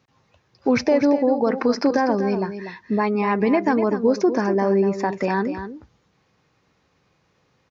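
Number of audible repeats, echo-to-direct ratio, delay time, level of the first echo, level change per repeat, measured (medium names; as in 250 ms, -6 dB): 1, -10.0 dB, 244 ms, -10.0 dB, no regular repeats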